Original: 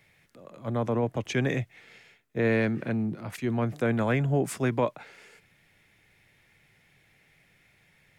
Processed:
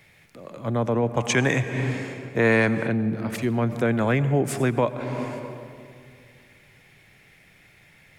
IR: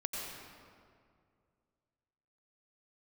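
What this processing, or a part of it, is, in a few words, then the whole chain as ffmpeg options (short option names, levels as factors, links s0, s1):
ducked reverb: -filter_complex "[0:a]asplit=3[s0][s1][s2];[1:a]atrim=start_sample=2205[s3];[s1][s3]afir=irnorm=-1:irlink=0[s4];[s2]apad=whole_len=361111[s5];[s4][s5]sidechaincompress=threshold=0.0141:ratio=8:attack=42:release=295,volume=0.891[s6];[s0][s6]amix=inputs=2:normalize=0,asettb=1/sr,asplit=3[s7][s8][s9];[s7]atrim=end=1.174[s10];[s8]atrim=start=1.17:end=2.87,asetpts=PTS-STARTPTS,afade=t=in:d=0.004:c=qsin,afade=t=out:st=1.696:d=0.004:c=qsin,equalizer=f=1000:t=o:w=1:g=8,equalizer=f=2000:t=o:w=1:g=3,equalizer=f=8000:t=o:w=1:g=12[s11];[s9]atrim=start=2.866[s12];[s10][s11]acrossfade=d=0.004:c1=hsin:c2=qsin[s13];[s13][s12]acrossfade=d=0.004:c1=qsin:c2=hsin,volume=1.33"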